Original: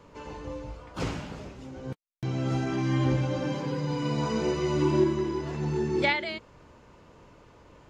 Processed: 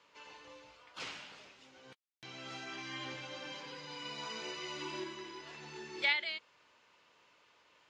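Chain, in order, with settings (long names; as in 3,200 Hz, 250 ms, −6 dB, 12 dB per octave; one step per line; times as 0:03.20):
resonant band-pass 3,300 Hz, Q 1
level −1 dB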